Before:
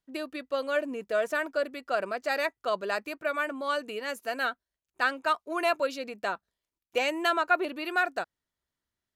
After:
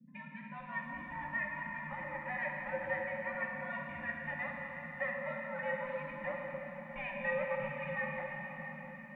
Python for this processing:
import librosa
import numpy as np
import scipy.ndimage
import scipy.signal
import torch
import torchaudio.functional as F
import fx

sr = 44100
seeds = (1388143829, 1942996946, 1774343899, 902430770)

p1 = fx.band_invert(x, sr, width_hz=500)
p2 = fx.low_shelf(p1, sr, hz=200.0, db=-9.0)
p3 = fx.notch(p2, sr, hz=650.0, q=15.0)
p4 = p3 + 0.3 * np.pad(p3, (int(5.7 * sr / 1000.0), 0))[:len(p3)]
p5 = fx.over_compress(p4, sr, threshold_db=-30.0, ratio=-1.0)
p6 = p4 + (p5 * librosa.db_to_amplitude(-1.0))
p7 = fx.formant_cascade(p6, sr, vowel='e')
p8 = fx.wow_flutter(p7, sr, seeds[0], rate_hz=2.1, depth_cents=19.0)
p9 = fx.dmg_noise_band(p8, sr, seeds[1], low_hz=150.0, high_hz=240.0, level_db=-56.0)
p10 = fx.comb_fb(p9, sr, f0_hz=74.0, decay_s=0.16, harmonics='all', damping=0.0, mix_pct=60)
p11 = p10 + fx.echo_filtered(p10, sr, ms=107, feedback_pct=62, hz=3200.0, wet_db=-12.5, dry=0)
p12 = fx.rev_plate(p11, sr, seeds[2], rt60_s=4.2, hf_ratio=0.95, predelay_ms=0, drr_db=-1.0)
p13 = fx.echo_crushed(p12, sr, ms=675, feedback_pct=35, bits=12, wet_db=-14.0)
y = p13 * librosa.db_to_amplitude(2.0)